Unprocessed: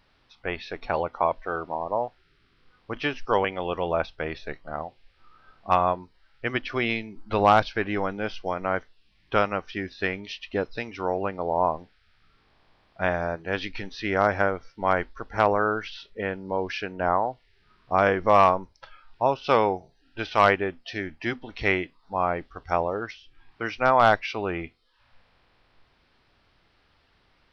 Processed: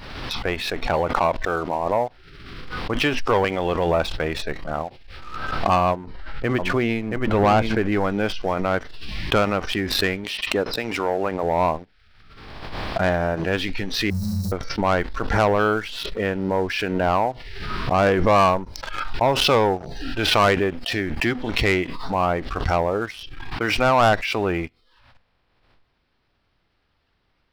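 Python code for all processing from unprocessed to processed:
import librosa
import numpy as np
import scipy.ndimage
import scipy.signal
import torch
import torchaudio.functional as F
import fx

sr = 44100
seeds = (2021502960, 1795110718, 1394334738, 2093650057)

y = fx.chain(x, sr, fx.lowpass(hz=1300.0, slope=6),
    fx.echo_single(ms=676, db=-6.5), at=(5.91, 7.92))
y = fx.chain(y, sr, fx.highpass(hz=250.0, slope=6),
    fx.high_shelf(hz=3400.0, db=-5.0), at=(10.24, 11.43))
y = fx.chain(y, sr, fx.block_float(bits=7),
    fx.brickwall_bandstop(low_hz=220.0, high_hz=3800.0),
    fx.room_flutter(wall_m=5.7, rt60_s=0.92), at=(14.1, 14.52))
y = fx.low_shelf(y, sr, hz=400.0, db=3.5)
y = fx.leveller(y, sr, passes=2)
y = fx.pre_swell(y, sr, db_per_s=36.0)
y = y * 10.0 ** (-3.0 / 20.0)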